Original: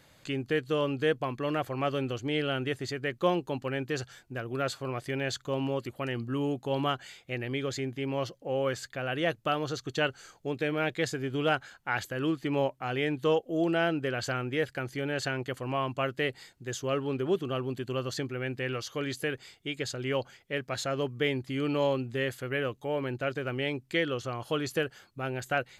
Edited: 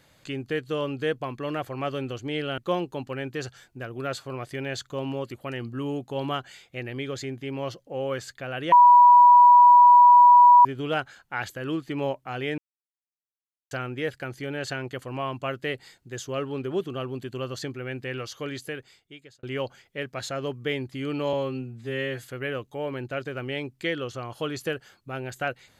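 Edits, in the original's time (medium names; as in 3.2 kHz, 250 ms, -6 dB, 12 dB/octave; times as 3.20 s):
2.58–3.13 s: delete
9.27–11.20 s: bleep 974 Hz -9.5 dBFS
13.13–14.26 s: mute
18.99–19.98 s: fade out
21.88–22.33 s: stretch 2×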